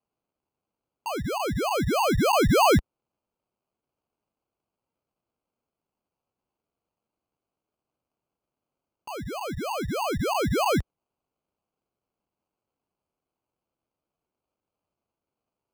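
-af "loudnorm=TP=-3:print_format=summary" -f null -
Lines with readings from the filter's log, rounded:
Input Integrated:    -24.7 LUFS
Input True Peak:     -13.7 dBTP
Input LRA:             5.8 LU
Input Threshold:     -35.3 LUFS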